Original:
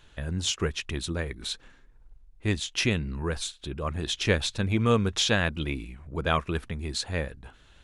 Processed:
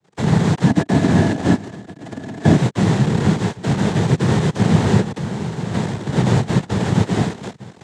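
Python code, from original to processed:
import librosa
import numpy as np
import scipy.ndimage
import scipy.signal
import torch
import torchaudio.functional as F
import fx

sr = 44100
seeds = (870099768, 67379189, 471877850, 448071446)

y = np.r_[np.sort(x[:len(x) // 256 * 256].reshape(-1, 256), axis=1).ravel(), x[len(x) // 256 * 256:]]
y = fx.recorder_agc(y, sr, target_db=-18.5, rise_db_per_s=6.8, max_gain_db=30)
y = fx.leveller(y, sr, passes=5)
y = fx.low_shelf(y, sr, hz=360.0, db=6.5)
y = y + 10.0 ** (-20.0 / 20.0) * np.pad(y, (int(1111 * sr / 1000.0), 0))[:len(y)]
y = fx.level_steps(y, sr, step_db=18, at=(5.0, 5.73), fade=0.02)
y = fx.noise_vocoder(y, sr, seeds[0], bands=6)
y = fx.small_body(y, sr, hz=(280.0, 660.0, 1700.0), ring_ms=45, db=11, at=(0.67, 2.57))
y = F.gain(torch.from_numpy(y), -4.5).numpy()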